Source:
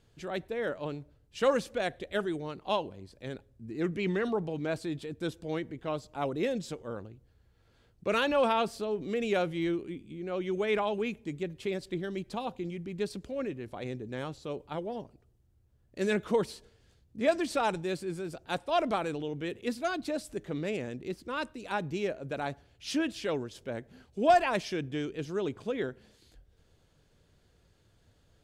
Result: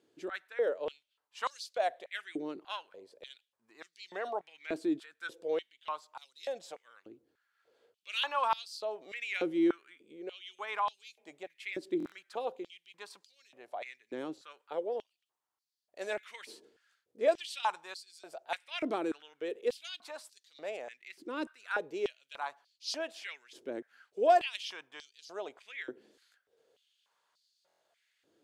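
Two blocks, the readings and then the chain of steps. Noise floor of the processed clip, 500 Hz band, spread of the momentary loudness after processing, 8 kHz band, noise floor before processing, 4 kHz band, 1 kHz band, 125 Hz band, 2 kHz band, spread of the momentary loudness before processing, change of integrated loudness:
-84 dBFS, -4.5 dB, 19 LU, -4.5 dB, -66 dBFS, -1.0 dB, -2.5 dB, -23.0 dB, -3.5 dB, 12 LU, -3.5 dB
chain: stuck buffer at 11.98/27.67, samples 1024, times 5; stepped high-pass 3.4 Hz 320–4500 Hz; gain -6.5 dB

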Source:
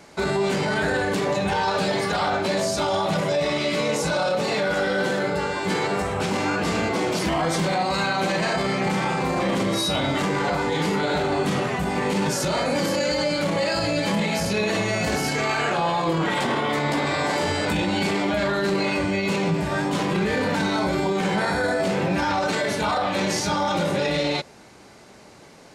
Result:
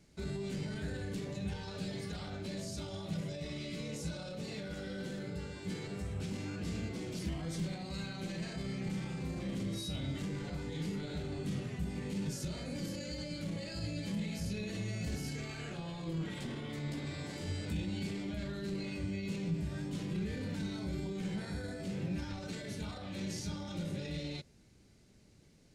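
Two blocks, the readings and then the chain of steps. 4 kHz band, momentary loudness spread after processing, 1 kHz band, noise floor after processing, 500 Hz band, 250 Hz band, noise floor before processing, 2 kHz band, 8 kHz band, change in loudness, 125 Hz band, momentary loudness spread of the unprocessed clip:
-18.0 dB, 4 LU, -28.5 dB, -62 dBFS, -21.5 dB, -13.0 dB, -47 dBFS, -22.5 dB, -16.5 dB, -16.5 dB, -9.5 dB, 1 LU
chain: passive tone stack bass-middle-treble 10-0-1; gain +4 dB

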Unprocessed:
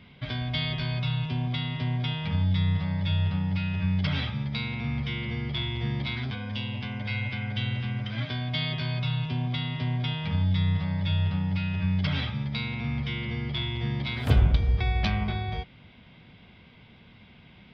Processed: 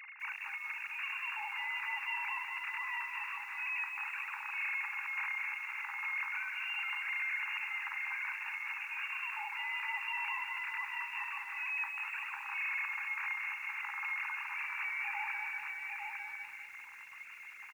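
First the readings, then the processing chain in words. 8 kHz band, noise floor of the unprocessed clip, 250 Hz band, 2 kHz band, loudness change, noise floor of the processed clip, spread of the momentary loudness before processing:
n/a, -53 dBFS, under -40 dB, +2.5 dB, -8.0 dB, -50 dBFS, 6 LU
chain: sine-wave speech; compressor 16:1, threshold -31 dBFS, peak gain reduction 17 dB; limiter -28.5 dBFS, peak gain reduction 7.5 dB; tilt +2.5 dB/oct; on a send: tapped delay 41/211/852 ms -15.5/-15.5/-5.5 dB; on the sum: tube stage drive 33 dB, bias 0.4; FFT band-pass 790–2800 Hz; lo-fi delay 0.198 s, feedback 55%, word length 10-bit, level -6 dB

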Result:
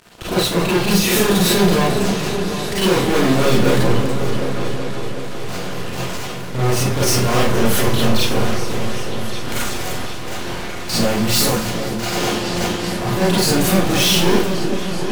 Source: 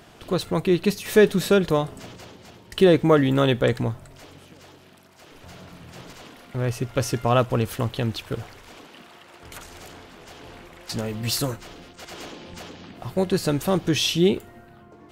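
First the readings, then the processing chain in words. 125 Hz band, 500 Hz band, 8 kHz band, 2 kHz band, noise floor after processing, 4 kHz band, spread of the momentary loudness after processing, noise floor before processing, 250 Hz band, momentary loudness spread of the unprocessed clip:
+6.5 dB, +3.5 dB, +13.5 dB, +9.5 dB, -25 dBFS, +10.5 dB, 12 LU, -50 dBFS, +6.5 dB, 23 LU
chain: sample leveller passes 5; overloaded stage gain 15 dB; repeats that get brighter 0.377 s, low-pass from 400 Hz, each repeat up 2 oct, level -6 dB; Schroeder reverb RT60 0.35 s, combs from 31 ms, DRR -6.5 dB; warbling echo 0.239 s, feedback 78%, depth 96 cents, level -17 dB; gain -7 dB

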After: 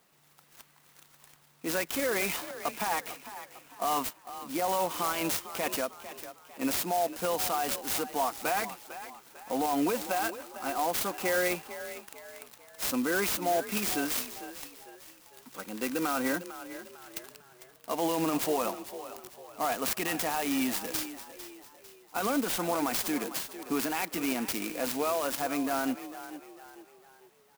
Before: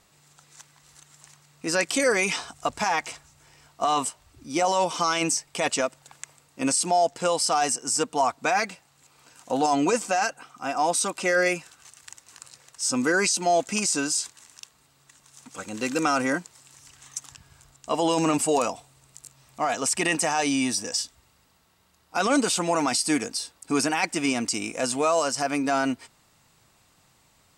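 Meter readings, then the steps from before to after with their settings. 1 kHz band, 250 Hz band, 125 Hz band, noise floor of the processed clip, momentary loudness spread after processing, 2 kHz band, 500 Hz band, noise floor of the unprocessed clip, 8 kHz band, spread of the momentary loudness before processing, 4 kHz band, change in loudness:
-6.5 dB, -5.5 dB, -7.5 dB, -61 dBFS, 16 LU, -7.0 dB, -6.5 dB, -62 dBFS, -9.0 dB, 11 LU, -7.0 dB, -6.0 dB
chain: HPF 160 Hz 24 dB/oct; limiter -16 dBFS, peak gain reduction 5.5 dB; frequency-shifting echo 0.45 s, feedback 42%, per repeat +38 Hz, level -13 dB; clock jitter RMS 0.052 ms; gain -4 dB

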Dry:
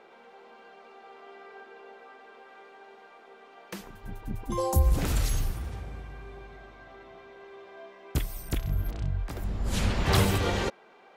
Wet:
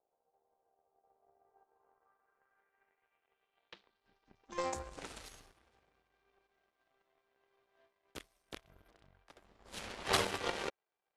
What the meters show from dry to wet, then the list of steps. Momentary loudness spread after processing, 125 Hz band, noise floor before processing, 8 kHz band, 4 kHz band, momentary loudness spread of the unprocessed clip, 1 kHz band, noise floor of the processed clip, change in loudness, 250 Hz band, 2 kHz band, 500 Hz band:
21 LU, -26.0 dB, -54 dBFS, -9.5 dB, -6.0 dB, 24 LU, -7.5 dB, -85 dBFS, -9.0 dB, -16.5 dB, -7.0 dB, -9.5 dB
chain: three-band isolator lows -18 dB, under 300 Hz, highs -18 dB, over 6200 Hz; power-law curve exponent 2; low-pass sweep 710 Hz -> 11000 Hz, 1.37–5.27; gain +3.5 dB

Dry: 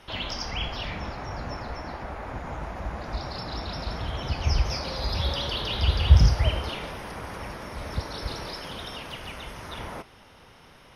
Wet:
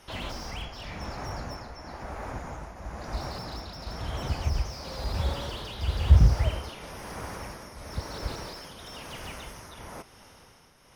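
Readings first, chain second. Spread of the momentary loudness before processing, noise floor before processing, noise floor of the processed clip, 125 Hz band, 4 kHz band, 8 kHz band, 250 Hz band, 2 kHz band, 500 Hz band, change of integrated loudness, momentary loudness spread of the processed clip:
12 LU, -52 dBFS, -55 dBFS, -2.0 dB, -8.0 dB, -1.0 dB, -2.5 dB, -5.0 dB, -3.5 dB, -2.5 dB, 13 LU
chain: resonant high shelf 4800 Hz +7 dB, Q 1.5; tremolo triangle 1 Hz, depth 65%; slew limiter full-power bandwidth 35 Hz

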